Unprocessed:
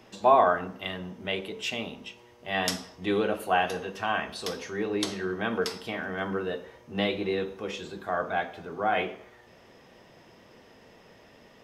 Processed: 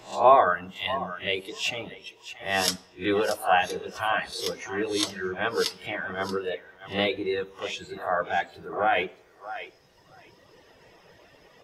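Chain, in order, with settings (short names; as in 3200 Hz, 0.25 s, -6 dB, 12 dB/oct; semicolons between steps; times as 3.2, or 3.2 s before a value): spectral swells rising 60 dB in 0.37 s; bell 230 Hz -14 dB 0.29 oct; thinning echo 0.631 s, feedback 16%, high-pass 370 Hz, level -11 dB; reverb removal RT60 1.9 s; gain +3 dB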